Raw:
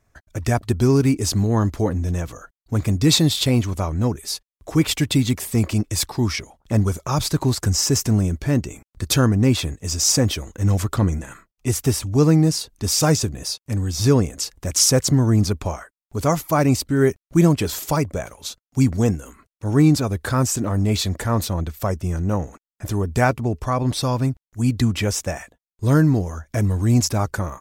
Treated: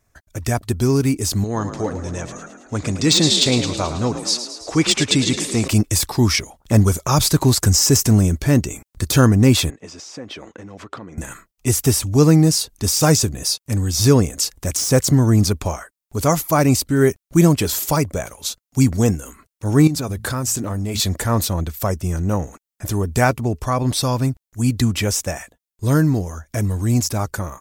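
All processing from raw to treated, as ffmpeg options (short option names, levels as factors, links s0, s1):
-filter_complex "[0:a]asettb=1/sr,asplit=3[s0][s1][s2];[s0]atrim=end=1.444[s3];[s1]atrim=start=1.44:end=5.68,asetpts=PTS-STARTPTS,afade=t=in:d=0.004:c=qsin,afade=t=out:st=4.236:d=0.004:c=qsin,lowpass=f=7700:w=0.5412,lowpass=f=7700:w=1.3066,lowshelf=f=230:g=-9.5,asplit=9[s4][s5][s6][s7][s8][s9][s10][s11][s12];[s5]adelay=108,afreqshift=39,volume=0.299[s13];[s6]adelay=216,afreqshift=78,volume=0.184[s14];[s7]adelay=324,afreqshift=117,volume=0.115[s15];[s8]adelay=432,afreqshift=156,volume=0.0708[s16];[s9]adelay=540,afreqshift=195,volume=0.0442[s17];[s10]adelay=648,afreqshift=234,volume=0.0272[s18];[s11]adelay=756,afreqshift=273,volume=0.017[s19];[s12]adelay=864,afreqshift=312,volume=0.0105[s20];[s4][s13][s14][s15][s16][s17][s18][s19][s20]amix=inputs=9:normalize=0,atrim=end_sample=186984[s21];[s2]atrim=start=5.676[s22];[s3][s21]acrossfade=d=0.004:c1=hsin:c2=qsin[s23];[s23][s22]acrossfade=d=0.004:c1=qsin:c2=hsin,asettb=1/sr,asplit=3[s24][s25][s26];[s24]atrim=end=9.704[s27];[s25]atrim=start=9.7:end=11.18,asetpts=PTS-STARTPTS,afade=t=in:d=0.004:c=qsin,afade=t=out:st=1.476:d=0.004:c=qsin,acompressor=threshold=0.0447:ratio=16:attack=3.2:release=140:knee=1:detection=peak,highpass=250,lowpass=2700[s28];[s26]atrim=start=11.176[s29];[s27][s28]acrossfade=d=0.004:c1=hsin:c2=qsin[s30];[s30][s29]acrossfade=d=0.004:c1=qsin:c2=hsin,asettb=1/sr,asplit=3[s31][s32][s33];[s31]atrim=end=19.874[s34];[s32]atrim=start=19.87:end=21,asetpts=PTS-STARTPTS,afade=t=in:d=0.004:c=qsin,afade=t=out:st=1.126:d=0.004:c=qsin,bandreject=f=54.26:t=h:w=4,bandreject=f=108.52:t=h:w=4,bandreject=f=162.78:t=h:w=4,bandreject=f=217.04:t=h:w=4,acompressor=threshold=0.0708:ratio=4:attack=3.2:release=140:knee=1:detection=peak[s35];[s33]atrim=start=20.996[s36];[s34][s35]acrossfade=d=0.004:c1=hsin:c2=qsin[s37];[s37][s36]acrossfade=d=0.004:c1=qsin:c2=hsin,deesser=0.4,highshelf=f=5300:g=8,dynaudnorm=f=280:g=17:m=3.76,volume=0.891"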